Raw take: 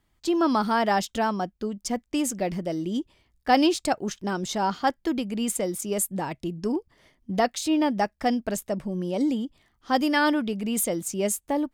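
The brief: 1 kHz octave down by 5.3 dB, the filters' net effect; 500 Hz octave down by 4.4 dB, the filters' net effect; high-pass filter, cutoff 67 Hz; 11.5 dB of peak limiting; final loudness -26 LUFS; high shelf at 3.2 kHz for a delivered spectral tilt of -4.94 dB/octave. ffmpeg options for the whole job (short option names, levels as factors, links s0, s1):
-af "highpass=67,equalizer=f=500:t=o:g=-4.5,equalizer=f=1000:t=o:g=-4.5,highshelf=f=3200:g=-8,volume=2,alimiter=limit=0.141:level=0:latency=1"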